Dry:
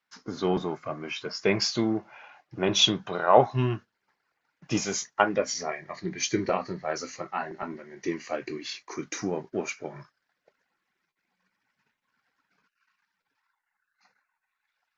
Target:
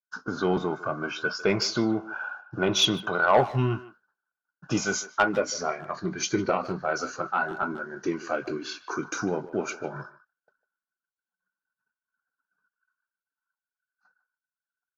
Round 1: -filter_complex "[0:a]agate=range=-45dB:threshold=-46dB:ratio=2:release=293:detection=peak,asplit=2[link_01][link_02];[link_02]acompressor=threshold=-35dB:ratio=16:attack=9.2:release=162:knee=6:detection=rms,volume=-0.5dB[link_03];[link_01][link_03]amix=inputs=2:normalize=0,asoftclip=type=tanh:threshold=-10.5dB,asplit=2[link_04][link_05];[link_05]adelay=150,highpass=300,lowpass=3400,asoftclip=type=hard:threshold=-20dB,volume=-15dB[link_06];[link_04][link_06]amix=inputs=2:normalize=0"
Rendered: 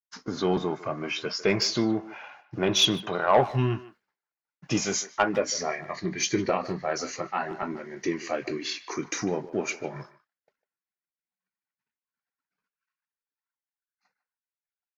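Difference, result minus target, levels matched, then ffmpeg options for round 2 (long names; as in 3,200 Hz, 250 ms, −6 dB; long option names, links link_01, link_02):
2,000 Hz band −4.0 dB
-filter_complex "[0:a]agate=range=-45dB:threshold=-46dB:ratio=2:release=293:detection=peak,asplit=2[link_01][link_02];[link_02]acompressor=threshold=-35dB:ratio=16:attack=9.2:release=162:knee=6:detection=rms,lowpass=frequency=1500:width_type=q:width=16,volume=-0.5dB[link_03];[link_01][link_03]amix=inputs=2:normalize=0,asoftclip=type=tanh:threshold=-10.5dB,asplit=2[link_04][link_05];[link_05]adelay=150,highpass=300,lowpass=3400,asoftclip=type=hard:threshold=-20dB,volume=-15dB[link_06];[link_04][link_06]amix=inputs=2:normalize=0"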